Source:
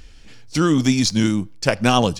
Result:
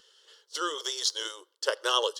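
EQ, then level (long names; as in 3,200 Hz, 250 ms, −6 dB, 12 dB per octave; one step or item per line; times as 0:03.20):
linear-phase brick-wall high-pass 320 Hz
parametric band 3,100 Hz +14.5 dB 0.61 octaves
phaser with its sweep stopped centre 480 Hz, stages 8
−6.5 dB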